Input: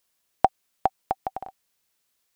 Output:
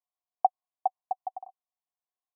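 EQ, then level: dynamic bell 850 Hz, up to +6 dB, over -34 dBFS, Q 1.2; cascade formant filter a; -5.0 dB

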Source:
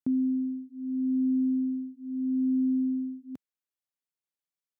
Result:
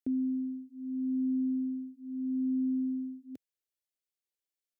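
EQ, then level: static phaser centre 420 Hz, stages 4; 0.0 dB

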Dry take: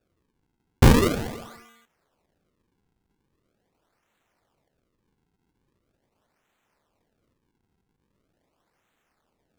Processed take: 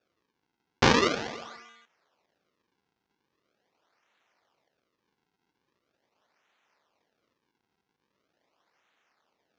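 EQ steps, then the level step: high-pass 770 Hz 6 dB/octave; steep low-pass 6.3 kHz 48 dB/octave; +3.0 dB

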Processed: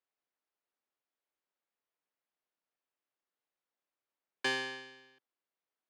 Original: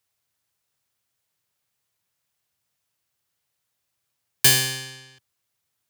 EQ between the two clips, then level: high-pass 250 Hz 24 dB/octave; dynamic bell 1 kHz, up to +4 dB, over -37 dBFS, Q 0.76; tape spacing loss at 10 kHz 32 dB; -5.5 dB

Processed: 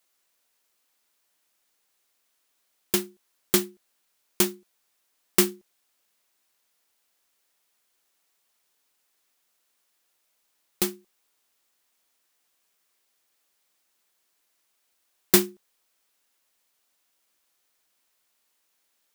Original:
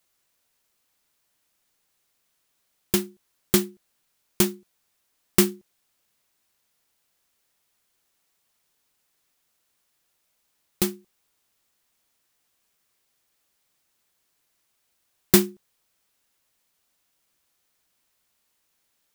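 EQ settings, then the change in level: bass shelf 65 Hz -7 dB; peaking EQ 110 Hz -12.5 dB 1.4 oct; 0.0 dB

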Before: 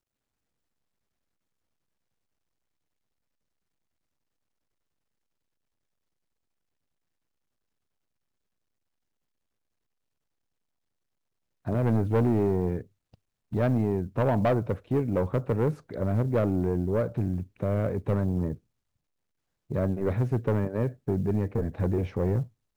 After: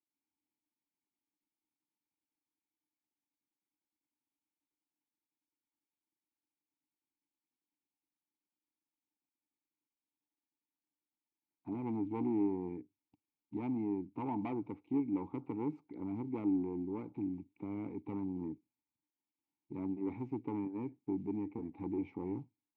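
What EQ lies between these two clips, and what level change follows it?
vowel filter u; +1.5 dB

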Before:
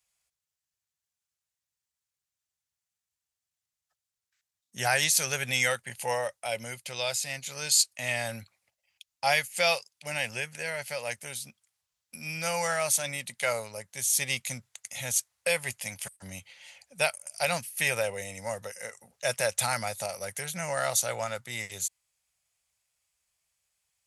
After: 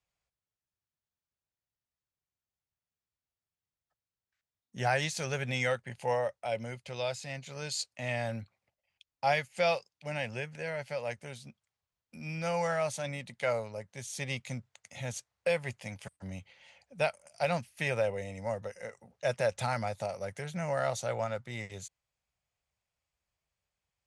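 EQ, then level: distance through air 89 m; tilt shelf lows +5.5 dB; -2.0 dB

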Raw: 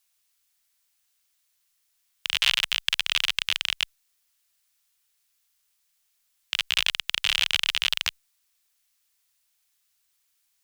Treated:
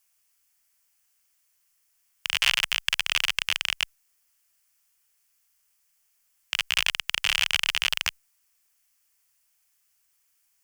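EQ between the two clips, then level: peaking EQ 3.8 kHz -10.5 dB 0.39 oct; +2.5 dB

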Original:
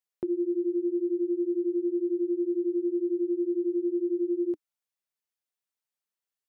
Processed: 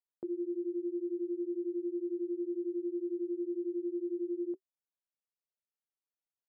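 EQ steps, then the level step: band-pass filter 500 Hz, Q 0.67; distance through air 450 m; band-stop 380 Hz, Q 12; -5.0 dB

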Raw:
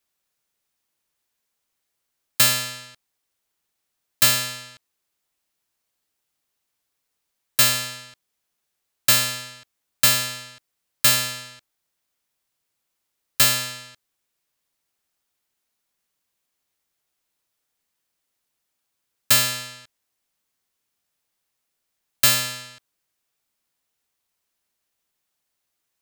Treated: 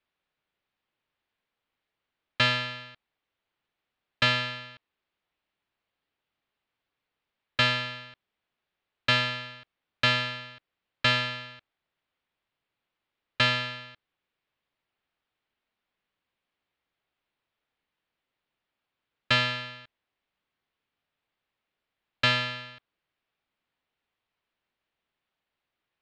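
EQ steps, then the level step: low-pass 3.5 kHz 24 dB/octave; 0.0 dB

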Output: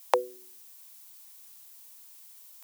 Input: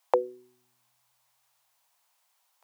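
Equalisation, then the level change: tilt EQ +5 dB/octave; +3.0 dB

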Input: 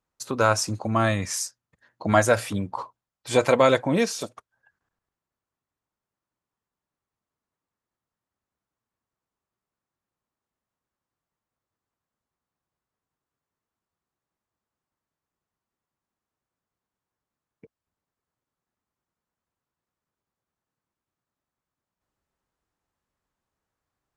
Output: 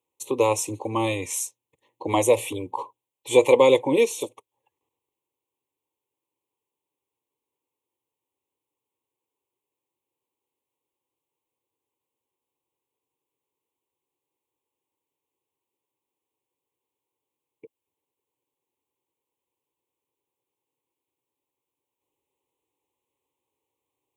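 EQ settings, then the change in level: high-pass 180 Hz 12 dB/octave; Butterworth band-stop 1.5 kHz, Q 1; static phaser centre 1 kHz, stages 8; +6.5 dB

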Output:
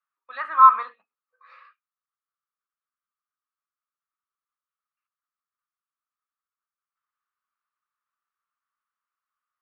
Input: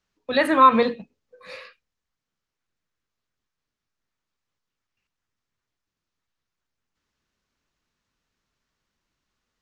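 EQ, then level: dynamic bell 1.2 kHz, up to +7 dB, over -27 dBFS, Q 1.5; ladder band-pass 1.3 kHz, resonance 75%; 0.0 dB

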